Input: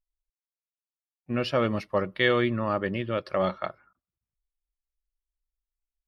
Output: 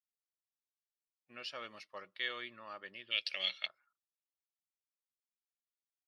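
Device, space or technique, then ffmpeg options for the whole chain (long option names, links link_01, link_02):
piezo pickup straight into a mixer: -filter_complex "[0:a]asplit=3[link_01][link_02][link_03];[link_01]afade=type=out:start_time=3.1:duration=0.02[link_04];[link_02]highshelf=frequency=1800:width_type=q:width=3:gain=14,afade=type=in:start_time=3.1:duration=0.02,afade=type=out:start_time=3.66:duration=0.02[link_05];[link_03]afade=type=in:start_time=3.66:duration=0.02[link_06];[link_04][link_05][link_06]amix=inputs=3:normalize=0,lowpass=5400,aderivative,volume=-2dB"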